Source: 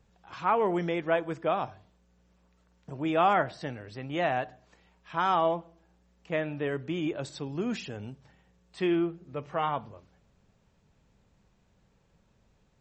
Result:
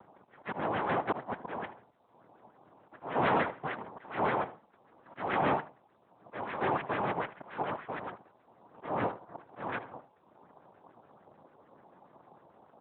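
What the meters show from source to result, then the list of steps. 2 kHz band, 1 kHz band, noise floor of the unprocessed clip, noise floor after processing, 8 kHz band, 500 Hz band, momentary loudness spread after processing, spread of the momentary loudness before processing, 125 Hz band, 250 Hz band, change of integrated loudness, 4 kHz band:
-1.0 dB, -3.0 dB, -68 dBFS, -66 dBFS, under -25 dB, -5.5 dB, 17 LU, 14 LU, -5.0 dB, -7.0 dB, -4.0 dB, -6.5 dB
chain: rattling part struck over -38 dBFS, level -17 dBFS; low-pass opened by the level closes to 900 Hz, open at -22 dBFS; bell 770 Hz +5.5 dB 1.1 oct; comb 2.1 ms, depth 39%; upward compressor, threshold -42 dBFS; auto swell 0.31 s; noise vocoder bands 2; LFO low-pass sine 6.8 Hz 870–1900 Hz; soft clip -17 dBFS, distortion -14 dB; on a send: echo 78 ms -17 dB; on the sum: gain -3 dB; AMR-NB 12.2 kbps 8000 Hz

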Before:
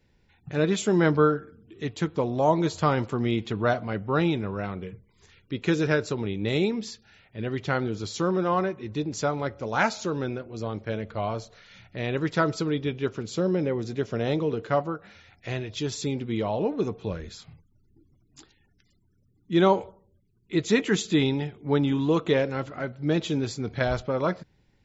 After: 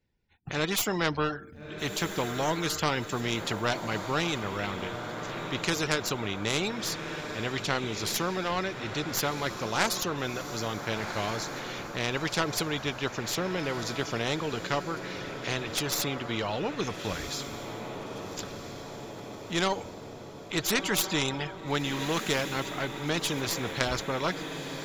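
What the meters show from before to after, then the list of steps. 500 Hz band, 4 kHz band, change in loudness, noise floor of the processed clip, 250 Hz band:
-6.0 dB, +5.5 dB, -3.5 dB, -43 dBFS, -6.5 dB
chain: tracing distortion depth 0.056 ms; gate -58 dBFS, range -24 dB; reverb removal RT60 0.56 s; diffused feedback echo 1.376 s, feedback 53%, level -16 dB; spectral compressor 2:1

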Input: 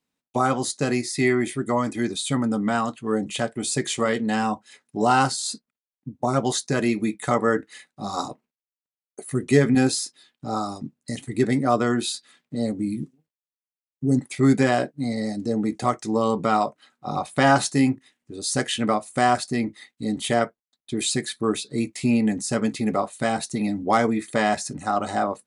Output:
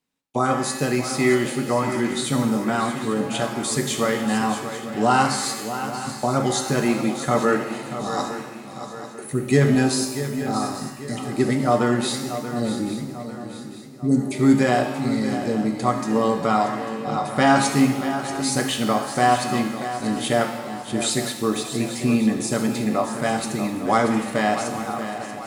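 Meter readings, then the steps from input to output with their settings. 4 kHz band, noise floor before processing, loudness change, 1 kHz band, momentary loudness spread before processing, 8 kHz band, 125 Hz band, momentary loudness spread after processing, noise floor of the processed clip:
+2.0 dB, under -85 dBFS, +1.5 dB, +2.0 dB, 11 LU, +2.0 dB, +2.0 dB, 10 LU, -37 dBFS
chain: ending faded out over 1.18 s; swung echo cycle 0.845 s, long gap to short 3:1, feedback 43%, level -11 dB; shimmer reverb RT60 1.1 s, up +7 st, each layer -8 dB, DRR 5.5 dB

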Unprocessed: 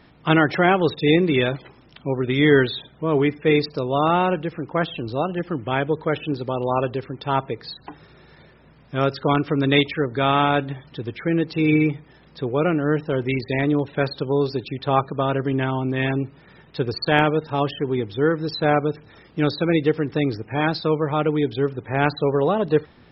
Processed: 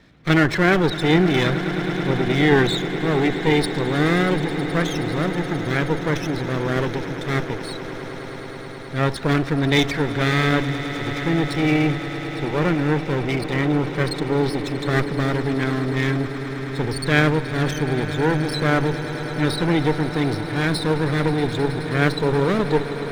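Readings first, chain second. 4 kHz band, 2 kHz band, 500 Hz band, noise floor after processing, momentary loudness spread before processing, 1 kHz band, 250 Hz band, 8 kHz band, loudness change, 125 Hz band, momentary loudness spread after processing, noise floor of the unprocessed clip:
+2.0 dB, +3.0 dB, -1.0 dB, -32 dBFS, 9 LU, -2.5 dB, +1.5 dB, n/a, +0.5 dB, +3.5 dB, 8 LU, -52 dBFS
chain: minimum comb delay 0.52 ms; transient shaper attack -1 dB, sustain +5 dB; swelling echo 0.106 s, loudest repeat 8, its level -17 dB

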